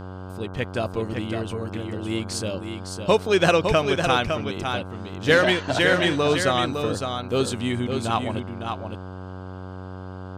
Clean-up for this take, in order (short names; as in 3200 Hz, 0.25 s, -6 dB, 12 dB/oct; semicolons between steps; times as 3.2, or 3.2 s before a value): de-hum 93.1 Hz, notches 17; inverse comb 0.558 s -6 dB